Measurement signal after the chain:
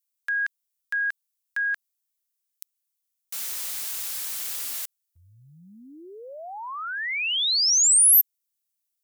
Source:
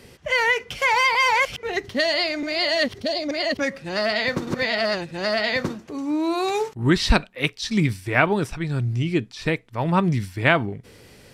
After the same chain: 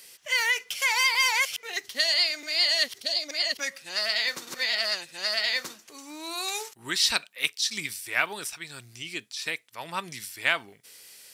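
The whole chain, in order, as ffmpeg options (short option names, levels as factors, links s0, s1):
-af "aderivative,aeval=exprs='0.266*(cos(1*acos(clip(val(0)/0.266,-1,1)))-cos(1*PI/2))+0.00473*(cos(2*acos(clip(val(0)/0.266,-1,1)))-cos(2*PI/2))':c=same,acontrast=80"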